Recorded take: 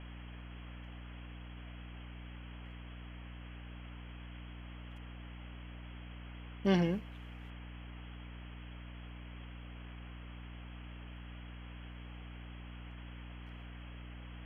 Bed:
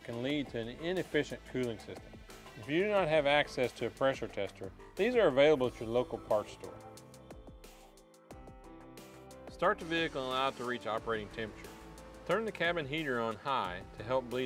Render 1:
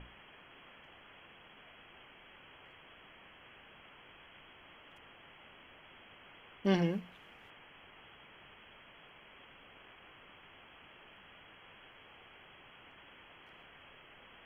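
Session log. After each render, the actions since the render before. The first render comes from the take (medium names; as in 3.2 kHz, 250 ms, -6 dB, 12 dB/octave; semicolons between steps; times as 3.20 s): hum notches 60/120/180/240/300 Hz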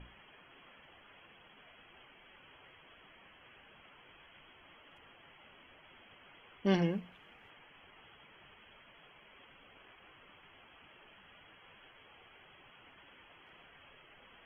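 noise reduction 8 dB, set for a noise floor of -58 dBFS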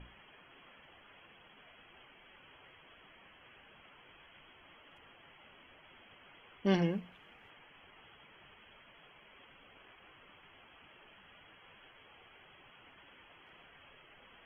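no audible change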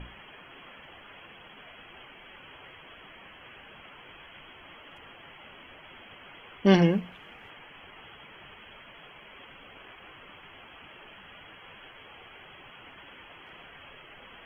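trim +10 dB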